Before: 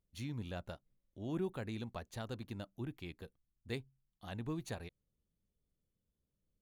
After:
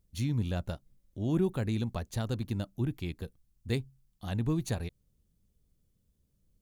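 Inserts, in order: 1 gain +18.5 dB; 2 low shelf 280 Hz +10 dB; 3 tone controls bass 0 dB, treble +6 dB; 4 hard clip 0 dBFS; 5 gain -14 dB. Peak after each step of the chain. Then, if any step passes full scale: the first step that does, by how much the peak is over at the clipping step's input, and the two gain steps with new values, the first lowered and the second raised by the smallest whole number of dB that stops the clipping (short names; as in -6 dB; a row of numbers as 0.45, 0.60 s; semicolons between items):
-7.0, -2.5, -2.0, -2.0, -16.0 dBFS; no overload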